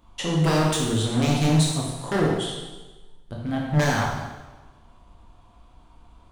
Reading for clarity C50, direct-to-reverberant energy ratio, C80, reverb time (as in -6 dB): 1.0 dB, -3.5 dB, 3.5 dB, 1.2 s